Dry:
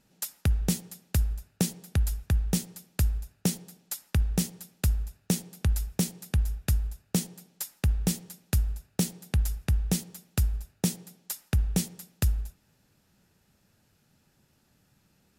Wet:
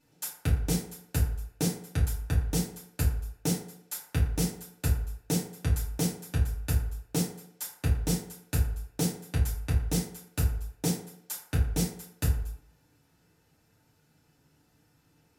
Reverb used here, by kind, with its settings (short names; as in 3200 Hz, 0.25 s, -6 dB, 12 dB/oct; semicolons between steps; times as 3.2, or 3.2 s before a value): FDN reverb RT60 0.6 s, low-frequency decay 0.75×, high-frequency decay 0.5×, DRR -8 dB; gain -7.5 dB